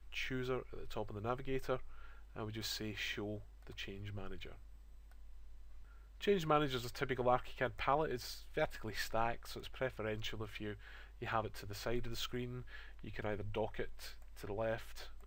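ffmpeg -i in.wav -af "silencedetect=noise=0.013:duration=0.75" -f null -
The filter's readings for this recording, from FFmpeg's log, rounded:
silence_start: 4.43
silence_end: 6.23 | silence_duration: 1.80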